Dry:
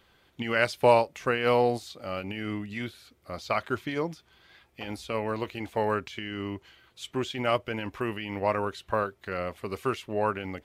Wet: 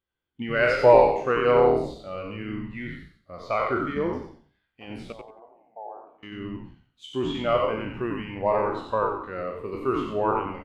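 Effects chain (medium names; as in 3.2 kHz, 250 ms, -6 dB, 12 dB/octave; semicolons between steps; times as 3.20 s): spectral sustain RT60 0.83 s; waveshaping leveller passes 1; 5.12–6.23 s: band-pass filter 730 Hz, Q 6.8; frequency-shifting echo 91 ms, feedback 36%, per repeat -88 Hz, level -4 dB; spectral contrast expander 1.5:1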